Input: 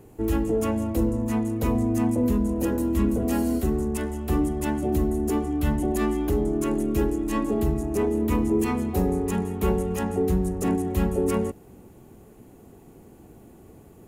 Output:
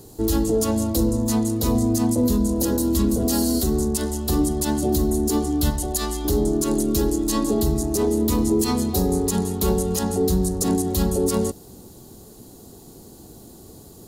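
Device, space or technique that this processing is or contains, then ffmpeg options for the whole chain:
over-bright horn tweeter: -filter_complex "[0:a]asettb=1/sr,asplit=3[link_01][link_02][link_03];[link_01]atrim=end=5.704[link_04];[link_02]atrim=start=5.7:end=6.25,asetpts=PTS-STARTPTS,afade=type=in:duration=0.004:curve=qsin,afade=type=out:start_time=0.546:duration=0.004:curve=qsin,equalizer=frequency=250:width_type=o:width=1.7:gain=-11.5[link_05];[link_03]atrim=start=6.246[link_06];[link_04][link_05]acrossfade=duration=0.004:curve1=hsin:curve2=qsin[link_07];[link_07][link_06]acrossfade=duration=0.004:curve1=qsin:curve2=hsin,highshelf=frequency=3200:width_type=q:width=3:gain=10,alimiter=limit=-15.5dB:level=0:latency=1:release=64,volume=4dB"

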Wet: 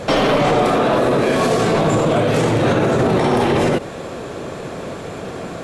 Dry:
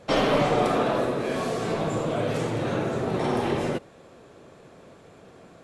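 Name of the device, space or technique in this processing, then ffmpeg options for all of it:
loud club master: -af "acompressor=threshold=-27dB:ratio=2,asoftclip=type=hard:threshold=-19dB,alimiter=level_in=28dB:limit=-1dB:release=50:level=0:latency=1,volume=-7dB"

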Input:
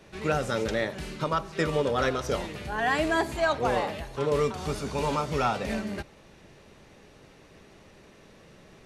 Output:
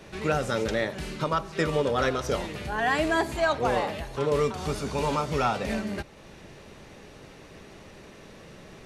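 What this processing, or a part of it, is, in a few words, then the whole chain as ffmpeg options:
parallel compression: -filter_complex "[0:a]asplit=2[link_01][link_02];[link_02]acompressor=threshold=-45dB:ratio=6,volume=-0.5dB[link_03];[link_01][link_03]amix=inputs=2:normalize=0"

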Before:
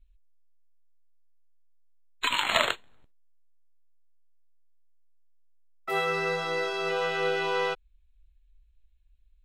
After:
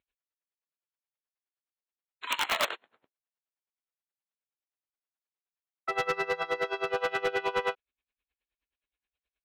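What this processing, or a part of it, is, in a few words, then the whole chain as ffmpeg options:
helicopter radio: -filter_complex "[0:a]highpass=360,lowpass=2800,aeval=exprs='val(0)*pow(10,-21*(0.5-0.5*cos(2*PI*9.5*n/s))/20)':channel_layout=same,asoftclip=type=hard:threshold=-27.5dB,asettb=1/sr,asplit=3[link_01][link_02][link_03];[link_01]atrim=end=2.294[link_04];[link_02]atrim=start=2.29:end=2.69,asetpts=PTS-STARTPTS,afade=type=in:duration=0.004:curve=qsin,afade=type=out:start_time=0.396:duration=0.004:curve=qsin,aemphasis=mode=production:type=50fm[link_05];[link_03]atrim=start=2.686[link_06];[link_04][link_05]acrossfade=duration=0.004:curve1=hsin:curve2=qsin[link_07];[link_07][link_06]acrossfade=duration=0.004:curve1=qsin:curve2=hsin,volume=5.5dB"

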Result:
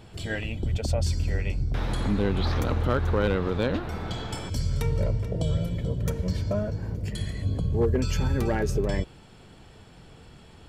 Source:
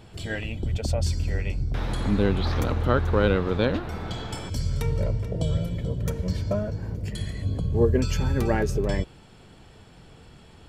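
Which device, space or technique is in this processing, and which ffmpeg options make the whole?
clipper into limiter: -af "asoftclip=type=hard:threshold=-13dB,alimiter=limit=-16dB:level=0:latency=1:release=61"

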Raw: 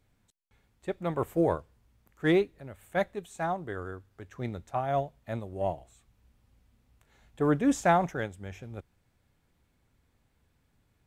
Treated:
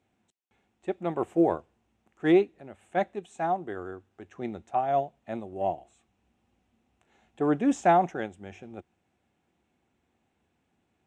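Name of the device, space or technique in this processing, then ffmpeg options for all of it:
car door speaker: -af "highpass=100,equalizer=frequency=120:width_type=q:width=4:gain=-8,equalizer=frequency=220:width_type=q:width=4:gain=5,equalizer=frequency=350:width_type=q:width=4:gain=8,equalizer=frequency=750:width_type=q:width=4:gain=9,equalizer=frequency=2700:width_type=q:width=4:gain=5,equalizer=frequency=4600:width_type=q:width=4:gain=-7,lowpass=frequency=8400:width=0.5412,lowpass=frequency=8400:width=1.3066,volume=-2.5dB"

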